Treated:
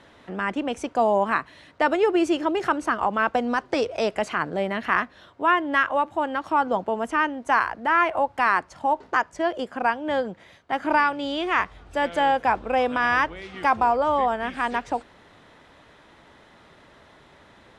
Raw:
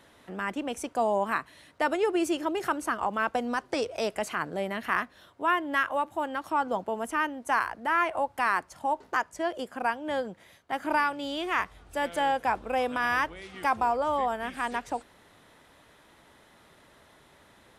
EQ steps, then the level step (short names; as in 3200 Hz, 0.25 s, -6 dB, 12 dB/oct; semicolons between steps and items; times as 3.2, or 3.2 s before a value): air absorption 85 m; +6.0 dB